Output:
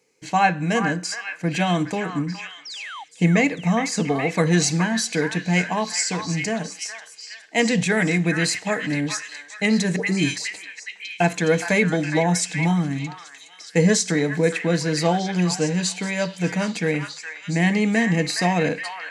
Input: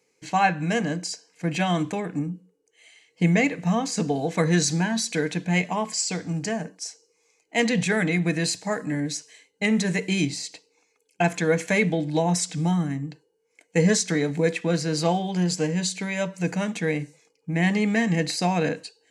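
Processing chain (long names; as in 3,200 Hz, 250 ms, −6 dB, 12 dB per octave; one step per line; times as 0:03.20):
0:02.65–0:03.04: sound drawn into the spectrogram fall 740–5,900 Hz −38 dBFS
0:09.96–0:10.37: all-pass dispersion highs, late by 111 ms, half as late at 1,300 Hz
echo through a band-pass that steps 416 ms, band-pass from 1,400 Hz, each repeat 0.7 octaves, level −3 dB
level +2.5 dB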